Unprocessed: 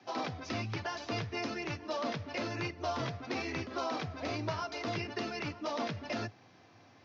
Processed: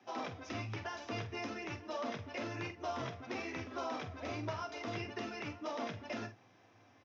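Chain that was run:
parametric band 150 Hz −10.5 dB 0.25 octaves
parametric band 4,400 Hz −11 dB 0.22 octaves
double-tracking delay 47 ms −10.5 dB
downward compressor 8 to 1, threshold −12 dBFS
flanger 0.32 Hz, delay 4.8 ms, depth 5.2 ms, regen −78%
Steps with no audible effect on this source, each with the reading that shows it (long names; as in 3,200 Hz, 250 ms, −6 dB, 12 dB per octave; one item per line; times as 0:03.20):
downward compressor, threshold −12 dBFS: peak of its input −23.0 dBFS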